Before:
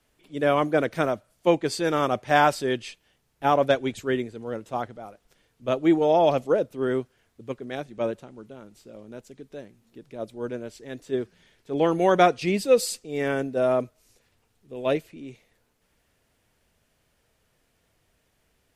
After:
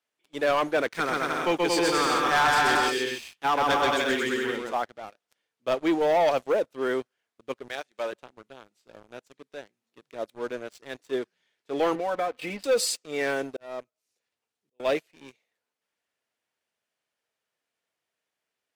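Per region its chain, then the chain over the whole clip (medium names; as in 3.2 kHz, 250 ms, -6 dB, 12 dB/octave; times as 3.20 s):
0.86–4.73 s: peaking EQ 620 Hz -13.5 dB 0.36 oct + bouncing-ball echo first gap 130 ms, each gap 0.75×, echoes 6, each echo -2 dB
7.68–8.13 s: high-pass 760 Hz 6 dB/octave + hard clipper -25.5 dBFS + tape noise reduction on one side only encoder only
11.95–12.64 s: distance through air 420 m + comb 3.9 ms, depth 78% + compression 4:1, threshold -27 dBFS
13.30–14.80 s: peaking EQ 1.5 kHz -2.5 dB 2.6 oct + slow attack 777 ms
whole clip: frequency weighting A; waveshaping leveller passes 3; trim -8 dB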